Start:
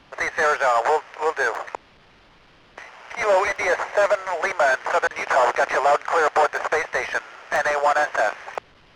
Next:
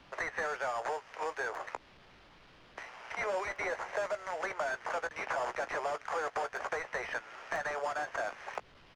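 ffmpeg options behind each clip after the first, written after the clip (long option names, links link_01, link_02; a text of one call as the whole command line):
ffmpeg -i in.wav -filter_complex "[0:a]acrossover=split=260|3000[link_01][link_02][link_03];[link_01]acompressor=threshold=-45dB:ratio=4[link_04];[link_02]acompressor=threshold=-29dB:ratio=4[link_05];[link_03]acompressor=threshold=-47dB:ratio=4[link_06];[link_04][link_05][link_06]amix=inputs=3:normalize=0,asplit=2[link_07][link_08];[link_08]adelay=16,volume=-12dB[link_09];[link_07][link_09]amix=inputs=2:normalize=0,volume=-6dB" out.wav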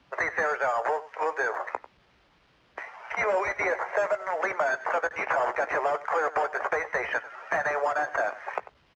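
ffmpeg -i in.wav -af "afftdn=noise_reduction=13:noise_floor=-46,highpass=54,aecho=1:1:95:0.141,volume=8.5dB" out.wav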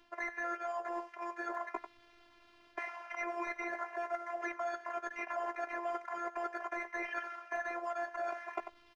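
ffmpeg -i in.wav -af "areverse,acompressor=threshold=-35dB:ratio=12,areverse,afftfilt=real='hypot(re,im)*cos(PI*b)':imag='0':win_size=512:overlap=0.75,volume=3.5dB" out.wav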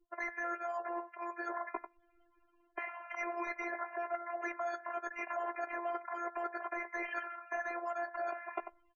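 ffmpeg -i in.wav -af "afftdn=noise_reduction=36:noise_floor=-53" out.wav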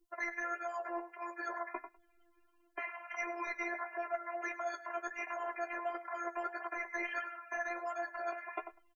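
ffmpeg -i in.wav -filter_complex "[0:a]highshelf=frequency=3100:gain=9.5,flanger=delay=8.8:depth=3.3:regen=33:speed=1.5:shape=triangular,asplit=2[link_01][link_02];[link_02]adelay=105,volume=-18dB,highshelf=frequency=4000:gain=-2.36[link_03];[link_01][link_03]amix=inputs=2:normalize=0,volume=2dB" out.wav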